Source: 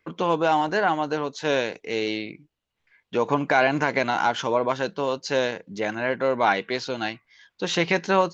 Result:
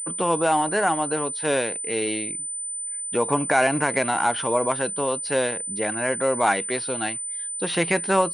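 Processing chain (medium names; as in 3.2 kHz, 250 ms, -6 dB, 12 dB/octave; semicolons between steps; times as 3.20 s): class-D stage that switches slowly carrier 9 kHz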